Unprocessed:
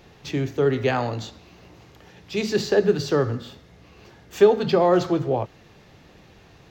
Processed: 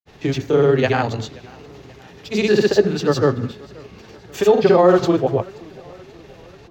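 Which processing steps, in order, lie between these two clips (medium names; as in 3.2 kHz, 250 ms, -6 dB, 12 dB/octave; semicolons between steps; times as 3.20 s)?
granulator, pitch spread up and down by 0 st; modulated delay 531 ms, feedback 57%, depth 125 cents, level -24 dB; trim +6 dB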